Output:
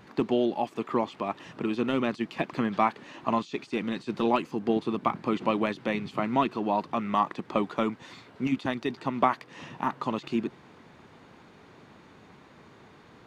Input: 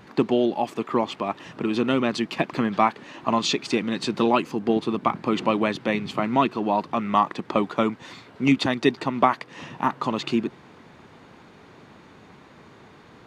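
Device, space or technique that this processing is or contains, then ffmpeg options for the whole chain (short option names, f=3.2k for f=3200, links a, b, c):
de-esser from a sidechain: -filter_complex "[0:a]asplit=2[a][b];[b]highpass=f=7k:w=0.5412,highpass=f=7k:w=1.3066,apad=whole_len=585040[c];[a][c]sidechaincompress=threshold=-59dB:ratio=8:attack=4.6:release=21,volume=-4dB"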